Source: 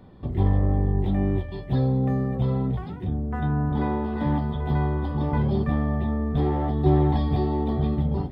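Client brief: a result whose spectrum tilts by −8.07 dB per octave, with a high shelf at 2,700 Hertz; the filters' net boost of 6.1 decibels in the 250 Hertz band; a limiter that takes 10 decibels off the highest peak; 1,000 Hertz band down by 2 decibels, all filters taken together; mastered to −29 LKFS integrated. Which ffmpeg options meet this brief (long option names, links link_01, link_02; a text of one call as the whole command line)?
ffmpeg -i in.wav -af "equalizer=frequency=250:width_type=o:gain=8,equalizer=frequency=1000:width_type=o:gain=-3,highshelf=frequency=2700:gain=-3.5,volume=-5.5dB,alimiter=limit=-20.5dB:level=0:latency=1" out.wav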